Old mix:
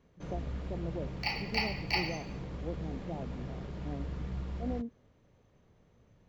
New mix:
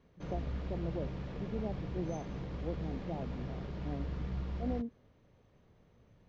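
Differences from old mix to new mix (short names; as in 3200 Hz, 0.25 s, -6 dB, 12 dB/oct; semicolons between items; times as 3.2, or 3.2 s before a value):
second sound: muted; master: add LPF 6000 Hz 24 dB/oct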